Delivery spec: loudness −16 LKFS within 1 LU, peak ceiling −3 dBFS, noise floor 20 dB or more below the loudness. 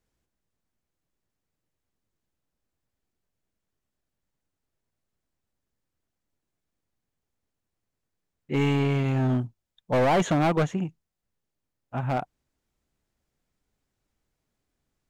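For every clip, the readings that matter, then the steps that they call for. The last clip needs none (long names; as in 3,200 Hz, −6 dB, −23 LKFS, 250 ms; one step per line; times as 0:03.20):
share of clipped samples 1.0%; peaks flattened at −18.5 dBFS; integrated loudness −25.5 LKFS; sample peak −18.5 dBFS; target loudness −16.0 LKFS
→ clipped peaks rebuilt −18.5 dBFS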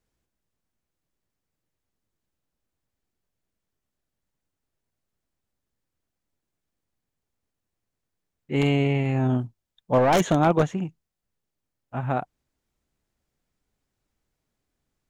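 share of clipped samples 0.0%; integrated loudness −23.5 LKFS; sample peak −9.5 dBFS; target loudness −16.0 LKFS
→ level +7.5 dB
brickwall limiter −3 dBFS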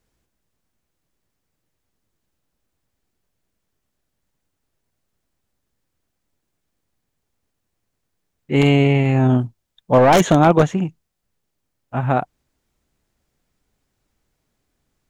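integrated loudness −16.5 LKFS; sample peak −3.0 dBFS; background noise floor −76 dBFS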